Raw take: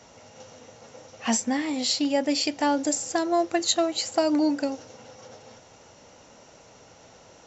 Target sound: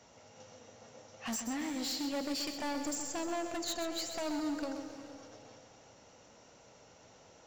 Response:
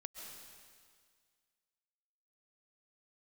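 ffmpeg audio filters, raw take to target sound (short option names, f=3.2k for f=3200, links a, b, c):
-filter_complex "[0:a]asoftclip=type=hard:threshold=-26dB,asplit=2[a][b];[1:a]atrim=start_sample=2205,adelay=129[c];[b][c]afir=irnorm=-1:irlink=0,volume=-2.5dB[d];[a][d]amix=inputs=2:normalize=0,volume=-8.5dB"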